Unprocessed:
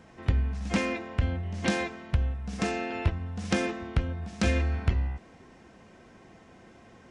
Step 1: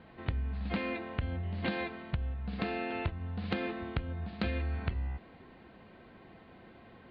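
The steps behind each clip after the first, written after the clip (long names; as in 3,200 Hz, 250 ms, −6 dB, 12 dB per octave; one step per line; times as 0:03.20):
Butterworth low-pass 4,500 Hz 96 dB per octave
downward compressor 4 to 1, threshold −29 dBFS, peak gain reduction 10 dB
level −1.5 dB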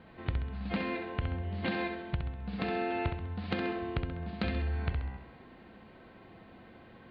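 flutter between parallel walls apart 11.3 metres, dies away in 0.6 s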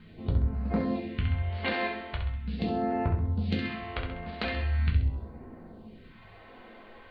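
all-pass phaser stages 2, 0.41 Hz, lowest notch 110–3,300 Hz
convolution reverb RT60 0.35 s, pre-delay 5 ms, DRR 0.5 dB
level +2.5 dB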